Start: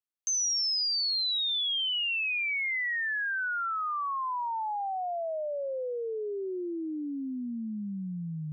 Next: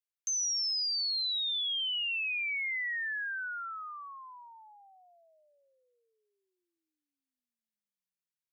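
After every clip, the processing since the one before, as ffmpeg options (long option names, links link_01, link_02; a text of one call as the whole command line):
ffmpeg -i in.wav -af "highpass=frequency=1500:width=0.5412,highpass=frequency=1500:width=1.3066,volume=-3dB" out.wav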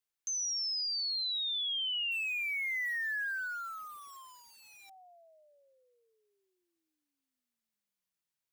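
ffmpeg -i in.wav -filter_complex "[0:a]acrossover=split=1300[link_01][link_02];[link_01]aeval=exprs='(mod(668*val(0)+1,2)-1)/668':channel_layout=same[link_03];[link_02]alimiter=level_in=11dB:limit=-24dB:level=0:latency=1,volume=-11dB[link_04];[link_03][link_04]amix=inputs=2:normalize=0,volume=3.5dB" out.wav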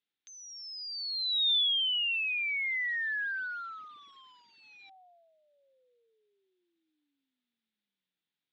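ffmpeg -i in.wav -af "highpass=130,equalizer=frequency=200:width_type=q:width=4:gain=5,equalizer=frequency=290:width_type=q:width=4:gain=6,equalizer=frequency=620:width_type=q:width=4:gain=-9,equalizer=frequency=1100:width_type=q:width=4:gain=-9,equalizer=frequency=3600:width_type=q:width=4:gain=8,lowpass=frequency=3800:width=0.5412,lowpass=frequency=3800:width=1.3066,volume=2.5dB" out.wav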